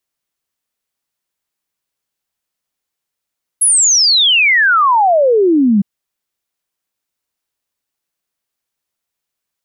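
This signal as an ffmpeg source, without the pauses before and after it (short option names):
-f lavfi -i "aevalsrc='0.422*clip(min(t,2.21-t)/0.01,0,1)*sin(2*PI*11000*2.21/log(190/11000)*(exp(log(190/11000)*t/2.21)-1))':d=2.21:s=44100"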